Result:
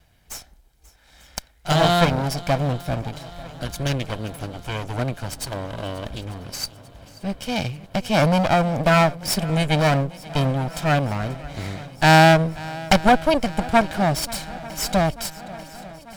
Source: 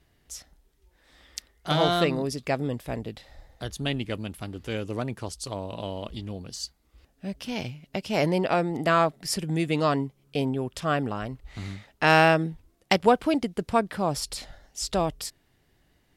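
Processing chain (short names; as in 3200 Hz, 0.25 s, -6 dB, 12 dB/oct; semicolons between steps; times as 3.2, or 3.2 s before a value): minimum comb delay 1.3 ms; swung echo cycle 0.892 s, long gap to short 1.5:1, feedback 64%, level -20 dB; gain +7 dB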